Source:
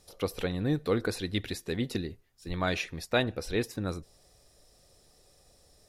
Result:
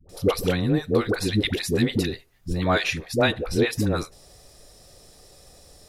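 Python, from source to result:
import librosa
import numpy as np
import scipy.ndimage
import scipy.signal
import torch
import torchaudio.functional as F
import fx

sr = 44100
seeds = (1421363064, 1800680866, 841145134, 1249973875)

y = fx.rider(x, sr, range_db=10, speed_s=0.5)
y = fx.dispersion(y, sr, late='highs', ms=93.0, hz=510.0)
y = y * 10.0 ** (8.5 / 20.0)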